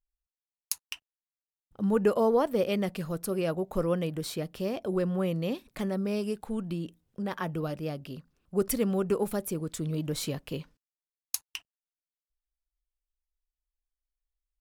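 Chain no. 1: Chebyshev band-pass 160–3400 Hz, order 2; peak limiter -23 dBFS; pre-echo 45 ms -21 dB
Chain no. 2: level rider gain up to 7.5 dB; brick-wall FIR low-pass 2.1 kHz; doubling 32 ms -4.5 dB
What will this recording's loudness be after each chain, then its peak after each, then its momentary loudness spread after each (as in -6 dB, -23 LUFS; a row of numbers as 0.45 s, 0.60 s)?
-33.5 LUFS, -22.0 LUFS; -22.5 dBFS, -5.5 dBFS; 15 LU, 12 LU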